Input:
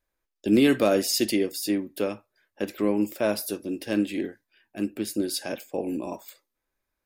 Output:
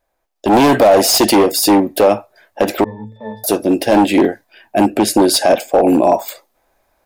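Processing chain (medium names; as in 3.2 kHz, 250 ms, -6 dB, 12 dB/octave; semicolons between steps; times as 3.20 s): 4.90–5.68 s: low-pass 12 kHz 12 dB/octave; hard clipper -24.5 dBFS, distortion -6 dB; peaking EQ 710 Hz +14.5 dB 0.81 oct; level rider gain up to 10.5 dB; 2.84–3.44 s: pitch-class resonator A, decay 0.46 s; loudness maximiser +8 dB; trim -1 dB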